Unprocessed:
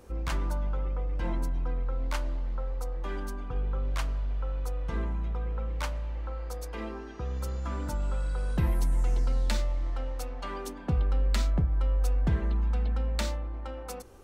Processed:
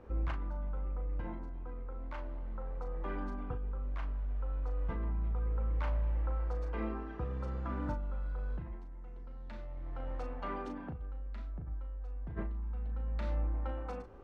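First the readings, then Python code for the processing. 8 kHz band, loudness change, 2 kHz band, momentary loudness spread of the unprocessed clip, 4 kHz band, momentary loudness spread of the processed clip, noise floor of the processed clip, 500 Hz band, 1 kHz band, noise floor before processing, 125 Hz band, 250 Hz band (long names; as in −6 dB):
below −25 dB, −7.5 dB, −8.5 dB, 9 LU, −18.5 dB, 9 LU, −45 dBFS, −6.0 dB, −5.0 dB, −40 dBFS, −7.5 dB, −5.5 dB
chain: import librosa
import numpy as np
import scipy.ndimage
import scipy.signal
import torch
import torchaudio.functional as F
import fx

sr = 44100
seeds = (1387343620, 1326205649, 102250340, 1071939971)

y = scipy.signal.sosfilt(scipy.signal.butter(2, 1900.0, 'lowpass', fs=sr, output='sos'), x)
y = fx.over_compress(y, sr, threshold_db=-32.0, ratio=-1.0)
y = fx.doubler(y, sr, ms=37.0, db=-7)
y = y * 10.0 ** (-5.0 / 20.0)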